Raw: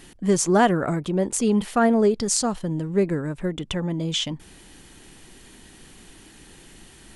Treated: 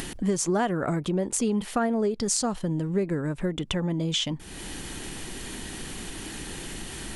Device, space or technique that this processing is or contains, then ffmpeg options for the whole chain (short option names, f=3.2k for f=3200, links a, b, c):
upward and downward compression: -af "acompressor=mode=upward:threshold=-25dB:ratio=2.5,acompressor=threshold=-22dB:ratio=5"